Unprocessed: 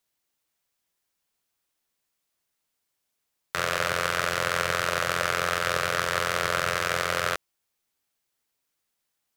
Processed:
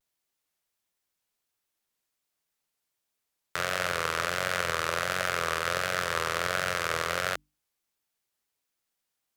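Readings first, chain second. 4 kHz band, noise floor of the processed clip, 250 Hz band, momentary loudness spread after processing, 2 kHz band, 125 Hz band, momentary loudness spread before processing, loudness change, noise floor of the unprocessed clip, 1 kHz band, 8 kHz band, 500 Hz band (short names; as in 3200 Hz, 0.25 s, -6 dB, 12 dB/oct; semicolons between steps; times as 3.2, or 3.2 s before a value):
-3.0 dB, -83 dBFS, -3.5 dB, 2 LU, -3.0 dB, -3.5 dB, 3 LU, -3.0 dB, -80 dBFS, -3.0 dB, -3.0 dB, -3.0 dB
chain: vibrato 1.4 Hz 95 cents; notches 50/100/150/200/250/300 Hz; gain -3 dB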